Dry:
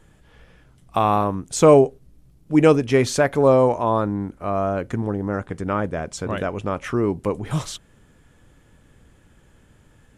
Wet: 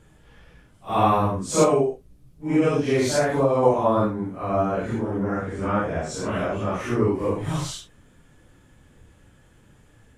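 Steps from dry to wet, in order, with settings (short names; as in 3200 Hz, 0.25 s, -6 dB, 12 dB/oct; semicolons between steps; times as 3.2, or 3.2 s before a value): phase scrambler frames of 0.2 s; 1.63–3.63 compressor 4:1, threshold -17 dBFS, peak gain reduction 8 dB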